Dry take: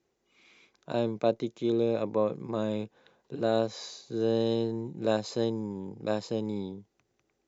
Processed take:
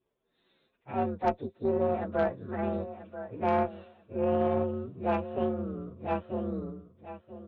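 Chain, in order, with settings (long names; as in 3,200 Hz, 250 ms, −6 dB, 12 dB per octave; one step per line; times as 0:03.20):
partials spread apart or drawn together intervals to 126%
downsampling to 8,000 Hz
on a send: repeating echo 986 ms, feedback 20%, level −12 dB
on the sum: harmonic generator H 3 −27 dB, 6 −20 dB, 7 −42 dB, 8 −26 dB, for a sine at −14 dBFS
level +1.5 dB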